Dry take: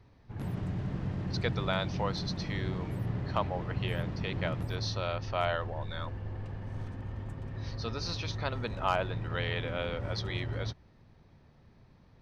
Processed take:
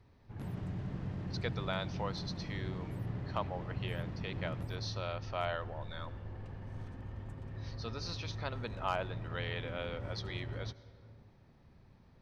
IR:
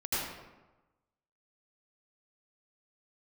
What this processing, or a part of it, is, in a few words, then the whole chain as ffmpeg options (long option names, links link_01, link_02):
ducked reverb: -filter_complex "[0:a]asplit=3[link_01][link_02][link_03];[1:a]atrim=start_sample=2205[link_04];[link_02][link_04]afir=irnorm=-1:irlink=0[link_05];[link_03]apad=whole_len=538608[link_06];[link_05][link_06]sidechaincompress=threshold=-49dB:ratio=8:attack=16:release=330,volume=-10dB[link_07];[link_01][link_07]amix=inputs=2:normalize=0,volume=-5.5dB"